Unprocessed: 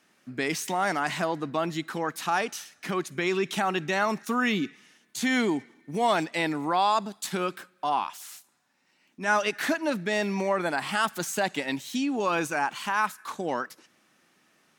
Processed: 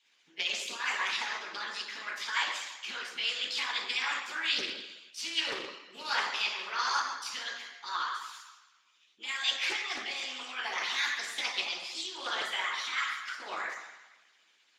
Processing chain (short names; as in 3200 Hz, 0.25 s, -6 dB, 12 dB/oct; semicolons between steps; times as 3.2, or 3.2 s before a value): delay-line pitch shifter +4.5 st; LPF 3200 Hz 12 dB/oct; differentiator; reverb RT60 1.0 s, pre-delay 3 ms, DRR -6.5 dB; harmonic-percussive split harmonic -16 dB; Doppler distortion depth 0.29 ms; gain +7.5 dB